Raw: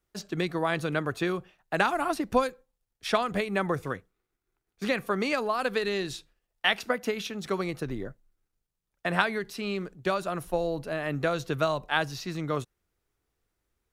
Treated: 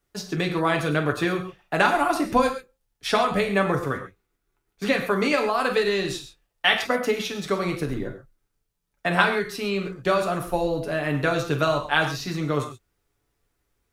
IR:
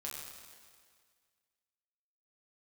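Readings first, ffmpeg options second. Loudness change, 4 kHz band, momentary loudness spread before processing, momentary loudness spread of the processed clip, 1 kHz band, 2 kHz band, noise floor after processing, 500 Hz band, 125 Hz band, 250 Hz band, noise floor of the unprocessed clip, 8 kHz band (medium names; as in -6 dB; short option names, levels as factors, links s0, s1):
+5.5 dB, +5.5 dB, 9 LU, 9 LU, +6.0 dB, +6.0 dB, -77 dBFS, +5.5 dB, +6.0 dB, +5.5 dB, -84 dBFS, +5.5 dB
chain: -filter_complex "[0:a]asplit=2[s0][s1];[1:a]atrim=start_sample=2205,atrim=end_sample=6174,adelay=7[s2];[s1][s2]afir=irnorm=-1:irlink=0,volume=1[s3];[s0][s3]amix=inputs=2:normalize=0,volume=1.5"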